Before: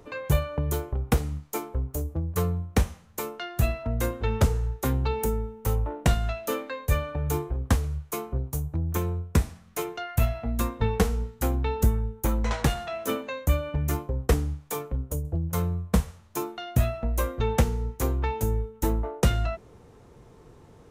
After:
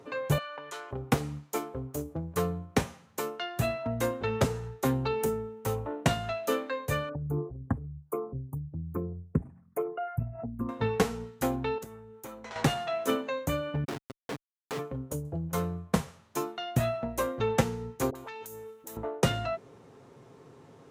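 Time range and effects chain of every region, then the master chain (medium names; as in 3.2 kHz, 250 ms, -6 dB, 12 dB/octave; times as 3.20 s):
0.38–0.91 s: high-pass 1.1 kHz + distance through air 81 m + level flattener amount 50%
7.09–10.69 s: resonances exaggerated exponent 2 + Butterworth band-stop 4.6 kHz, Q 0.6
11.78–12.56 s: bass shelf 210 Hz -10 dB + compression 2.5:1, threshold -42 dBFS
13.84–14.79 s: high-pass 280 Hz + Schmitt trigger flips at -27.5 dBFS
18.10–18.97 s: RIAA curve recording + compression 12:1, threshold -36 dBFS + phase dispersion highs, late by 51 ms, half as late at 580 Hz
whole clip: high-pass 150 Hz 12 dB/octave; treble shelf 9.8 kHz -9 dB; comb 7.4 ms, depth 36%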